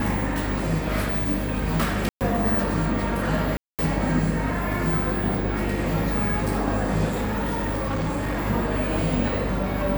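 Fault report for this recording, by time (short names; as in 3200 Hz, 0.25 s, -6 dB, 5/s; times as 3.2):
buzz 50 Hz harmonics 9 -29 dBFS
2.09–2.21 gap 0.118 s
3.57–3.79 gap 0.217 s
7.07–8.46 clipped -22 dBFS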